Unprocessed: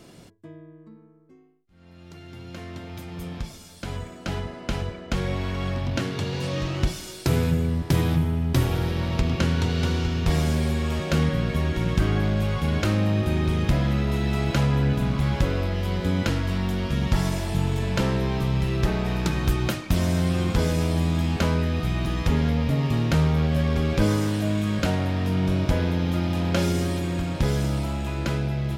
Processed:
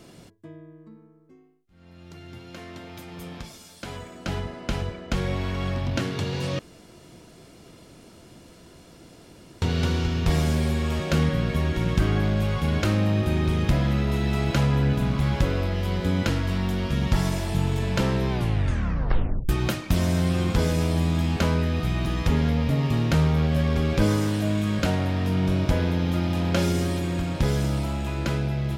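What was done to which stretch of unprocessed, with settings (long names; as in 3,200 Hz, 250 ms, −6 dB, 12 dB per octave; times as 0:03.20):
0:02.38–0:04.15: low-shelf EQ 140 Hz −11 dB
0:06.59–0:09.62: fill with room tone
0:18.30: tape stop 1.19 s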